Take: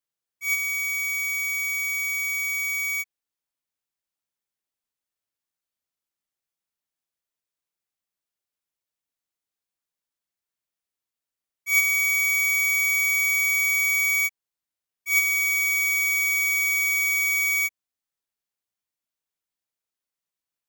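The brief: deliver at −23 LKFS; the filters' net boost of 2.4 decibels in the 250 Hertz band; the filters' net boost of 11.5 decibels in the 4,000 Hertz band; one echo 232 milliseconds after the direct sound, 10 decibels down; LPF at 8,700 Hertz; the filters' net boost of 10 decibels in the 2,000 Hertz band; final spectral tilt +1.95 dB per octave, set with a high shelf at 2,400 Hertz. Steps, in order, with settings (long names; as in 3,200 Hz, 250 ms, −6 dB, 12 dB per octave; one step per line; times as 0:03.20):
low-pass filter 8,700 Hz
parametric band 250 Hz +3.5 dB
parametric band 2,000 Hz +5.5 dB
high-shelf EQ 2,400 Hz +6.5 dB
parametric band 4,000 Hz +7.5 dB
single-tap delay 232 ms −10 dB
level −11 dB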